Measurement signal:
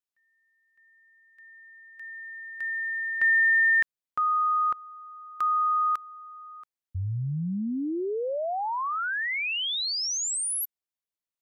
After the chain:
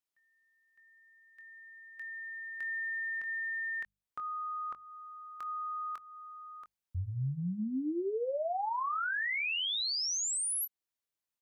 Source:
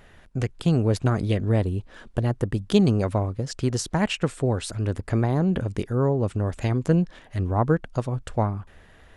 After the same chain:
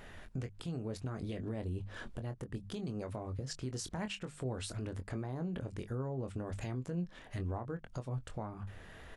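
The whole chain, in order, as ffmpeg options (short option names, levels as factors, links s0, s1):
-filter_complex "[0:a]bandreject=f=50:t=h:w=6,bandreject=f=100:t=h:w=6,bandreject=f=150:t=h:w=6,bandreject=f=200:t=h:w=6,acompressor=threshold=0.0398:ratio=5:attack=6.2:release=434:knee=6:detection=rms,alimiter=level_in=2.24:limit=0.0631:level=0:latency=1:release=224,volume=0.447,asplit=2[s0][s1];[s1]adelay=23,volume=0.355[s2];[s0][s2]amix=inputs=2:normalize=0"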